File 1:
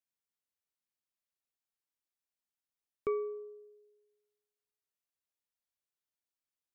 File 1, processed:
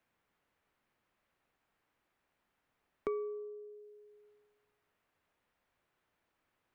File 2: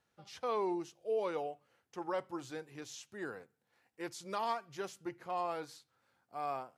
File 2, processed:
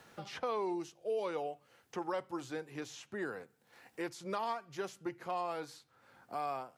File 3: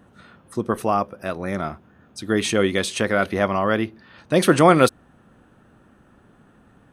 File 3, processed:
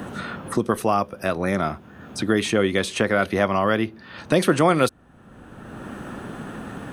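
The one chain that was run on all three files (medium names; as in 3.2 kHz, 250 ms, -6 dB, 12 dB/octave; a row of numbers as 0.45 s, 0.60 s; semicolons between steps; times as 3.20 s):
three bands compressed up and down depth 70%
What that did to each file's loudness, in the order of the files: -4.0 LU, 0.0 LU, -1.5 LU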